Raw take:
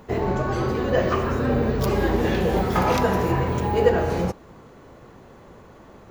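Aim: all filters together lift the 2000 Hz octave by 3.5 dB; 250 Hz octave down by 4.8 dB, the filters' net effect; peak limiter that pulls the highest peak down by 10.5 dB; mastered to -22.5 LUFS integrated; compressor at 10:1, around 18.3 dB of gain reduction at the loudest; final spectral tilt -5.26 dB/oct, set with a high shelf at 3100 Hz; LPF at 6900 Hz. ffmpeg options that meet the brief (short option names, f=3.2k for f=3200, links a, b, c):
-af "lowpass=6.9k,equalizer=f=250:t=o:g=-7,equalizer=f=2k:t=o:g=5.5,highshelf=f=3.1k:g=-3,acompressor=threshold=-33dB:ratio=10,volume=20dB,alimiter=limit=-12.5dB:level=0:latency=1"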